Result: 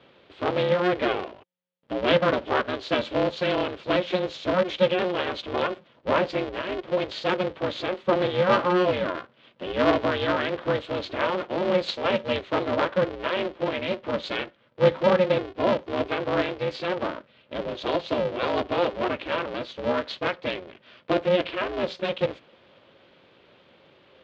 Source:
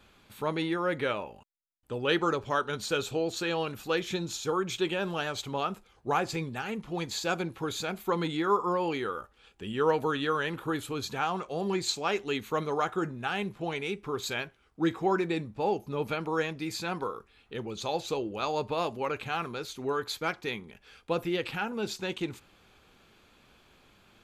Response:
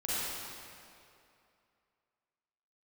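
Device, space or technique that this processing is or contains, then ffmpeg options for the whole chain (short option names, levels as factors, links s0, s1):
ring modulator pedal into a guitar cabinet: -filter_complex "[0:a]aeval=exprs='val(0)*sgn(sin(2*PI*180*n/s))':c=same,highpass=90,equalizer=f=360:t=q:w=4:g=5,equalizer=f=530:t=q:w=4:g=10,equalizer=f=3200:t=q:w=4:g=3,lowpass=f=4100:w=0.5412,lowpass=f=4100:w=1.3066,asettb=1/sr,asplit=3[s0][s1][s2];[s0]atrim=end=8.484[s3];[s1]atrim=start=8.48:end=8.93,asetpts=PTS-STARTPTS,afade=t=in:d=0.004:c=qsin,afade=t=out:st=0.446:d=0.004:c=qsin,asplit=2[s4][s5];[s5]adelay=16,volume=0.562[s6];[s4][s6]amix=inputs=2:normalize=0,atrim=end_sample=19845[s7];[s2]atrim=start=8.926[s8];[s3][s7]acrossfade=d=0.004:c1=hsin:c2=qsin[s9];[s9][s8]acrossfade=d=0.004:c1=qsin:c2=hsin,volume=1.33"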